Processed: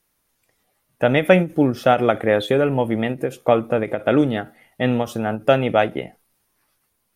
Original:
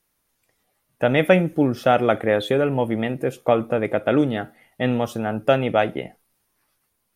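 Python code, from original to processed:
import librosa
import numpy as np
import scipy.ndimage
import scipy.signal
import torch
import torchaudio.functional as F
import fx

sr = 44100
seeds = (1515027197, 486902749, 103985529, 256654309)

y = fx.end_taper(x, sr, db_per_s=260.0)
y = y * 10.0 ** (2.0 / 20.0)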